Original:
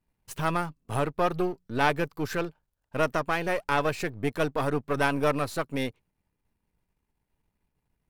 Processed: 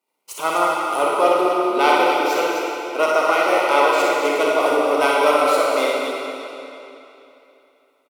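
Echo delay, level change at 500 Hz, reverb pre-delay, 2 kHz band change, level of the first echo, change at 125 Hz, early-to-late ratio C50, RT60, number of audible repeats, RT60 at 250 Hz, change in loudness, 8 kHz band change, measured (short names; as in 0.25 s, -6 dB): 63 ms, +12.0 dB, 31 ms, +9.0 dB, -6.0 dB, under -15 dB, -3.5 dB, 3.0 s, 2, 3.0 s, +10.5 dB, +12.0 dB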